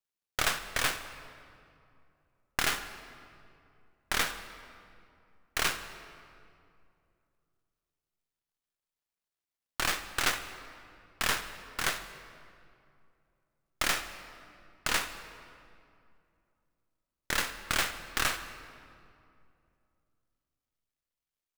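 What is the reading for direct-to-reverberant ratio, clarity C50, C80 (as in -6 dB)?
9.5 dB, 10.5 dB, 11.5 dB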